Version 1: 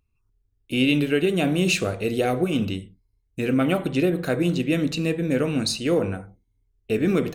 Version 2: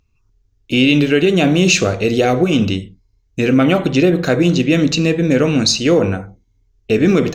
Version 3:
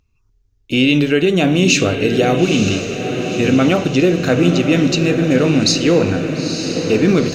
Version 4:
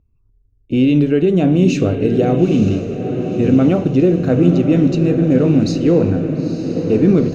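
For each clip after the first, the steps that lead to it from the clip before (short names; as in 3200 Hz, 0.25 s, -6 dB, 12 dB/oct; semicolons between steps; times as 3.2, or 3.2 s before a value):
resonant high shelf 7800 Hz -8 dB, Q 3; in parallel at +1 dB: limiter -15 dBFS, peak gain reduction 7 dB; on the sum: gain +3 dB
diffused feedback echo 0.934 s, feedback 57%, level -7 dB; gain -1 dB
tilt shelf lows +9 dB; mismatched tape noise reduction decoder only; gain -6 dB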